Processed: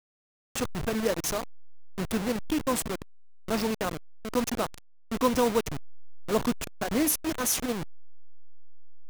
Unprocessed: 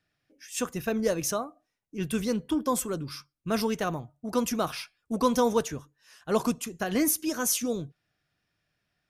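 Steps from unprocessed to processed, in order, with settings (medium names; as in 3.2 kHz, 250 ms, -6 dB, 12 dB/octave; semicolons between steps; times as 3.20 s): send-on-delta sampling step -26 dBFS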